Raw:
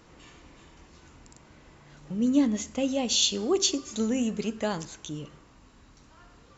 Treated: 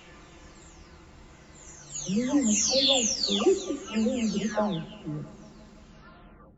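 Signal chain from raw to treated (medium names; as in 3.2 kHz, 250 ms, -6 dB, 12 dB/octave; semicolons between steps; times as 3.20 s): delay that grows with frequency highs early, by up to 742 ms; filtered feedback delay 170 ms, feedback 83%, low-pass 2.2 kHz, level -22 dB; trim +4.5 dB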